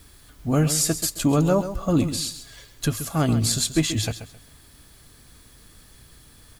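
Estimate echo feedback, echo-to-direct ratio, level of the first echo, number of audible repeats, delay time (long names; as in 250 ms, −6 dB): 25%, −11.0 dB, −11.5 dB, 2, 133 ms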